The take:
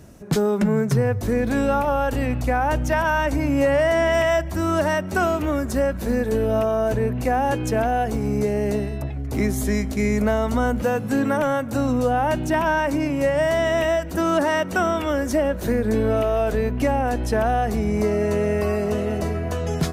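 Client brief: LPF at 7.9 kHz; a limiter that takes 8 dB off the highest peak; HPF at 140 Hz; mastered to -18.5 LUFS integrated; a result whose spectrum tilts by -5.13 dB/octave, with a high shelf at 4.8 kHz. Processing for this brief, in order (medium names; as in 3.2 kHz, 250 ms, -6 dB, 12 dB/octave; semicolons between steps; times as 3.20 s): high-pass 140 Hz; low-pass 7.9 kHz; treble shelf 4.8 kHz +3 dB; trim +8 dB; peak limiter -10.5 dBFS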